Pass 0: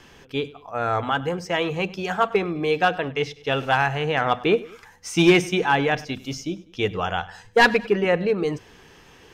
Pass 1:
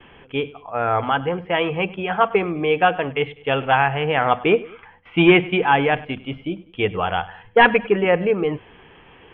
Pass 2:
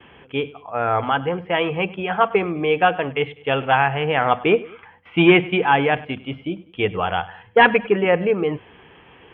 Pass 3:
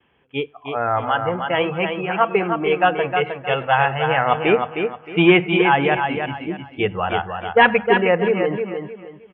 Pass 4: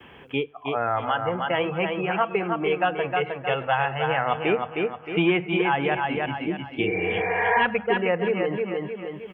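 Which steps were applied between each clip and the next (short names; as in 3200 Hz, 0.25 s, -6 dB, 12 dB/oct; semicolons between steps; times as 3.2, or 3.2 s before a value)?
rippled Chebyshev low-pass 3300 Hz, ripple 3 dB; gate with hold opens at -44 dBFS; gain +4.5 dB
HPF 56 Hz
spectral noise reduction 15 dB; on a send: feedback echo 0.311 s, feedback 29%, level -6 dB
spectral repair 6.86–7.58, 290–2500 Hz both; three-band squash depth 70%; gain -6 dB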